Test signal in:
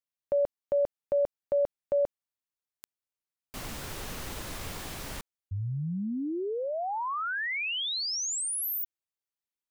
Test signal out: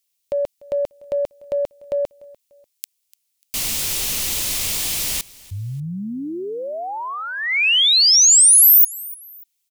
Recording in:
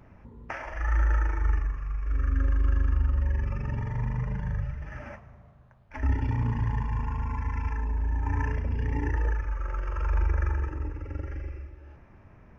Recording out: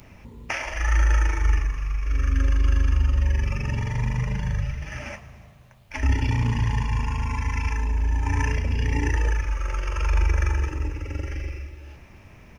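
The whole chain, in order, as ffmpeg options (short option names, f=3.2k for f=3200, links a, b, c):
-af "acontrast=49,aecho=1:1:295|590:0.0794|0.0278,aexciter=amount=4.8:drive=4.8:freq=2.2k,volume=-1.5dB"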